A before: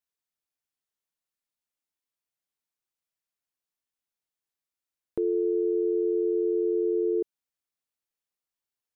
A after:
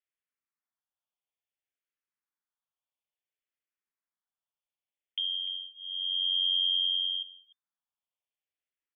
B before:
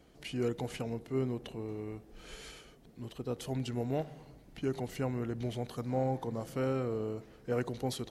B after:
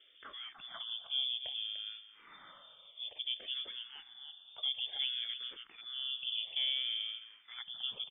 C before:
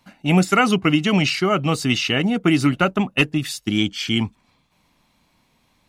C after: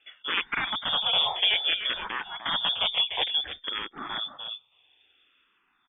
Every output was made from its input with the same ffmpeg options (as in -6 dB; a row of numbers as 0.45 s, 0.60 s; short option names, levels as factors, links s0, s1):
-filter_complex "[0:a]asplit=2[s0][s1];[s1]acompressor=threshold=0.0178:ratio=6,volume=1[s2];[s0][s2]amix=inputs=2:normalize=0,aeval=exprs='(mod(2.82*val(0)+1,2)-1)/2.82':c=same,asplit=2[s3][s4];[s4]adelay=297.4,volume=0.355,highshelf=f=4000:g=-6.69[s5];[s3][s5]amix=inputs=2:normalize=0,lowpass=f=3100:t=q:w=0.5098,lowpass=f=3100:t=q:w=0.6013,lowpass=f=3100:t=q:w=0.9,lowpass=f=3100:t=q:w=2.563,afreqshift=-3600,asplit=2[s6][s7];[s7]afreqshift=-0.58[s8];[s6][s8]amix=inputs=2:normalize=1,volume=0.501"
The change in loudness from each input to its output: -1.0 LU, -0.5 LU, -6.5 LU